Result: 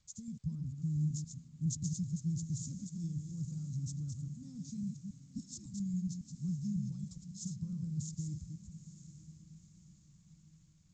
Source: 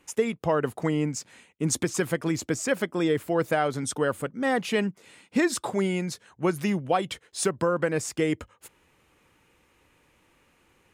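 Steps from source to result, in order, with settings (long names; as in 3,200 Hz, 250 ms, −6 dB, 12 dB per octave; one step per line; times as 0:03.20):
delay that plays each chunk backwards 138 ms, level −5.5 dB
inverse Chebyshev band-stop filter 380–3,100 Hz, stop band 50 dB
gain on a spectral selection 0:05.21–0:05.55, 300–3,400 Hz −17 dB
high-frequency loss of the air 76 metres
feedback delay with all-pass diffusion 907 ms, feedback 45%, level −13.5 dB
level −1 dB
G.722 64 kbit/s 16,000 Hz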